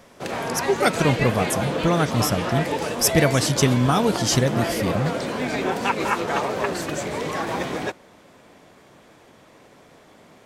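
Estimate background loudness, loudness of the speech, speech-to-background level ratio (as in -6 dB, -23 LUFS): -26.0 LUFS, -22.0 LUFS, 4.0 dB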